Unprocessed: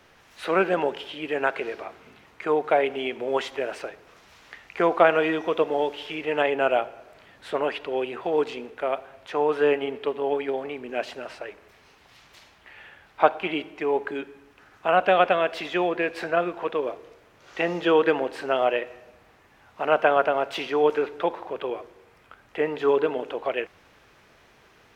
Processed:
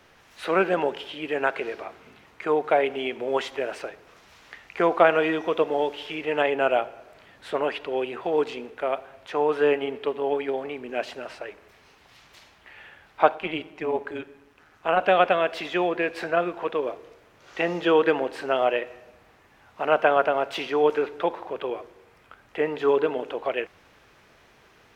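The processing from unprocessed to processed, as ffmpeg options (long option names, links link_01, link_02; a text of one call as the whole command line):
ffmpeg -i in.wav -filter_complex "[0:a]asplit=3[link_01][link_02][link_03];[link_01]afade=type=out:start_time=13.34:duration=0.02[link_04];[link_02]tremolo=f=160:d=0.571,afade=type=in:start_time=13.34:duration=0.02,afade=type=out:start_time=14.99:duration=0.02[link_05];[link_03]afade=type=in:start_time=14.99:duration=0.02[link_06];[link_04][link_05][link_06]amix=inputs=3:normalize=0" out.wav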